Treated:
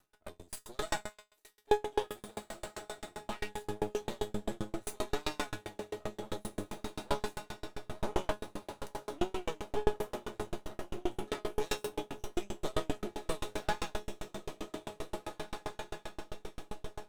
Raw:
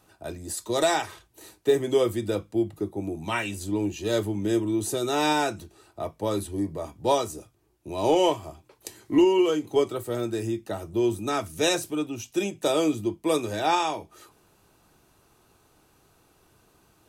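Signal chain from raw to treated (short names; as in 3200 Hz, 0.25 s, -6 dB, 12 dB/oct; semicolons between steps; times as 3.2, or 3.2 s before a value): resonator 210 Hz, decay 0.59 s, harmonics all, mix 90%; half-wave rectifier; 1.09–3.11 low shelf 290 Hz -12 dB; diffused feedback echo 1.937 s, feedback 52%, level -5 dB; dB-ramp tremolo decaying 7.6 Hz, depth 37 dB; gain +14 dB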